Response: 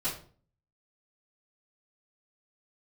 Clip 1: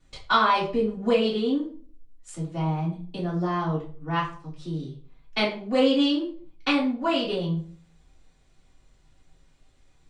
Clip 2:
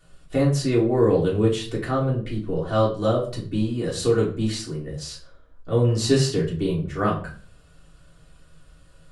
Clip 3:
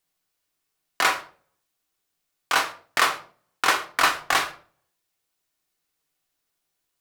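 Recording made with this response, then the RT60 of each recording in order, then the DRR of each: 1; 0.45 s, 0.45 s, 0.45 s; -15.5 dB, -6.0 dB, 4.0 dB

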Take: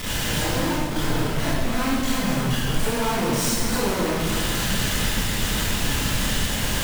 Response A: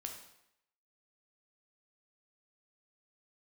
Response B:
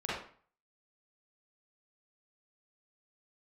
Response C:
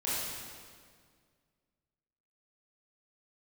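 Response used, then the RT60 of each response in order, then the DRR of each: C; 0.80 s, 0.45 s, 1.9 s; 2.5 dB, -9.0 dB, -10.0 dB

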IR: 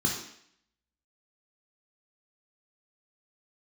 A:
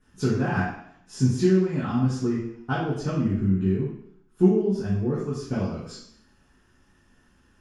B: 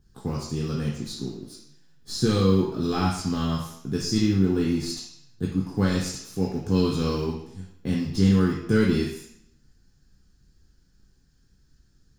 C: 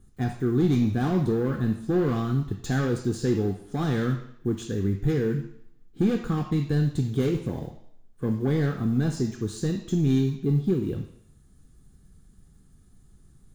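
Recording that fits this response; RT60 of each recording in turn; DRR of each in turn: B; 0.65 s, 0.65 s, 0.65 s; -10.0 dB, -3.0 dB, 4.5 dB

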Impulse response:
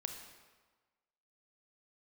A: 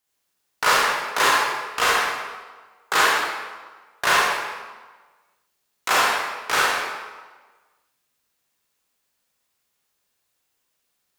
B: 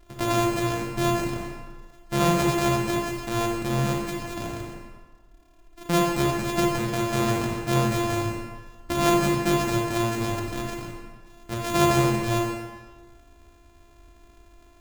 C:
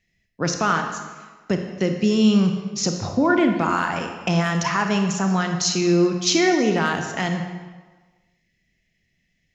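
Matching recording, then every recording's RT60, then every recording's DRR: C; 1.4 s, 1.4 s, 1.4 s; -6.0 dB, -1.0 dB, 4.5 dB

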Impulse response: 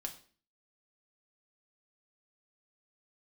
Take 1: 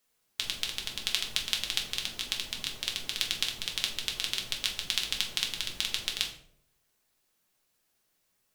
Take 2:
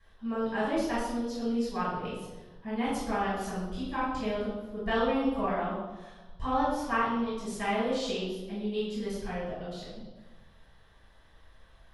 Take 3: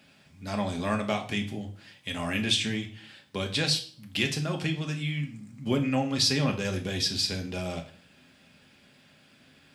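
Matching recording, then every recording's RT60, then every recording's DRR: 3; 0.65 s, 1.2 s, 0.45 s; -0.5 dB, -11.0 dB, 2.0 dB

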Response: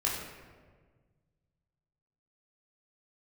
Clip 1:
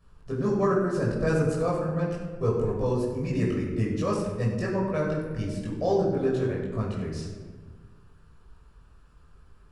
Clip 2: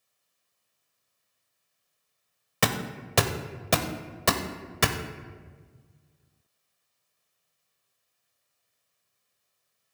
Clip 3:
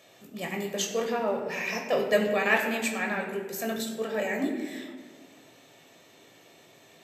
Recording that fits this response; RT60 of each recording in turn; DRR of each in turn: 1; 1.5 s, 1.6 s, 1.6 s; -5.0 dB, 5.0 dB, 1.0 dB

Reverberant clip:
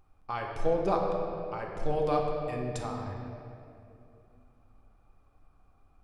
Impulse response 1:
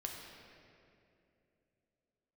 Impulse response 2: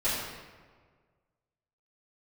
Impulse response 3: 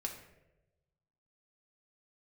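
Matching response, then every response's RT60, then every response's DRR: 1; 2.8 s, 1.6 s, 1.0 s; 0.0 dB, -14.5 dB, 1.0 dB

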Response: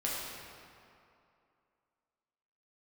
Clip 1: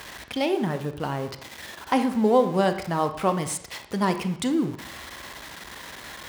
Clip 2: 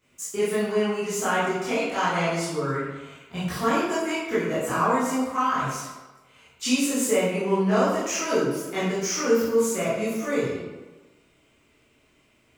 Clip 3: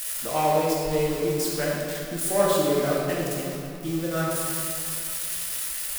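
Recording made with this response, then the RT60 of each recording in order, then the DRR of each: 3; 0.70 s, 1.2 s, 2.6 s; 8.5 dB, -12.0 dB, -6.0 dB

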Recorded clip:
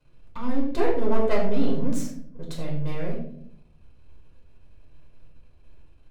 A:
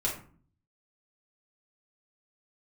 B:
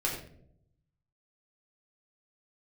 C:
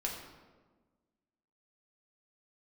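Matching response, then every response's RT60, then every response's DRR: B; 0.45 s, no single decay rate, 1.4 s; -4.5 dB, -4.0 dB, -1.5 dB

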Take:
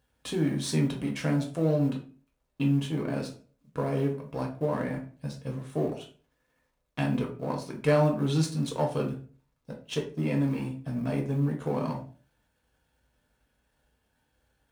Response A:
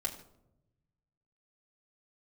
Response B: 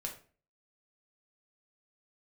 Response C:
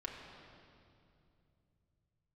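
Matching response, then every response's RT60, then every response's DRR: B; 0.85 s, 0.40 s, 2.6 s; -5.0 dB, 0.5 dB, -3.0 dB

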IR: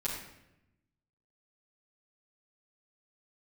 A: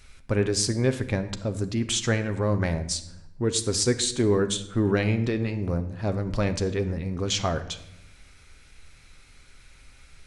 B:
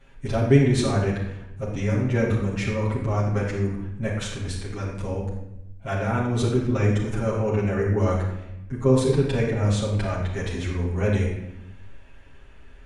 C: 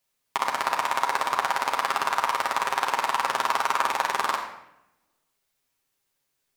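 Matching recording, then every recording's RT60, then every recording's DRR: B; 0.90 s, 0.85 s, 0.85 s; 8.0 dB, -8.5 dB, -1.0 dB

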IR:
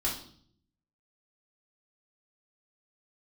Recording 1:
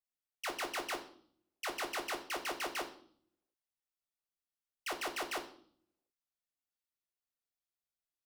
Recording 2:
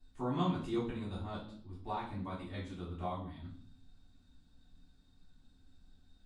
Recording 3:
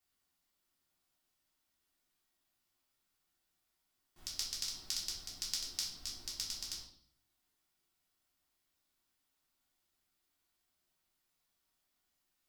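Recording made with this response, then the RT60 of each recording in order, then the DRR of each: 3; 0.55 s, 0.55 s, 0.55 s; 4.0 dB, -12.5 dB, -5.5 dB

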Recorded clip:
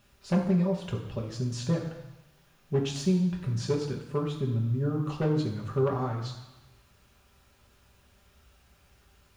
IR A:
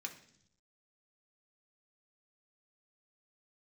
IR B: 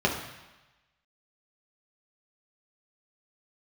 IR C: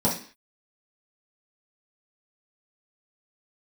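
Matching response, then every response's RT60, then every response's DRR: B; 0.70 s, 1.1 s, 0.45 s; 2.0 dB, -2.0 dB, -7.5 dB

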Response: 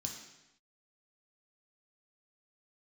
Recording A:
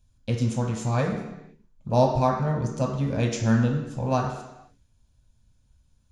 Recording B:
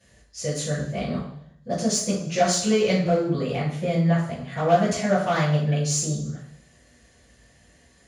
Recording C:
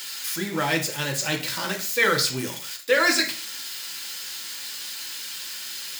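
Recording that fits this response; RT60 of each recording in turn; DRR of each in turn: A; no single decay rate, 0.65 s, 0.40 s; -0.5 dB, -13.0 dB, 1.0 dB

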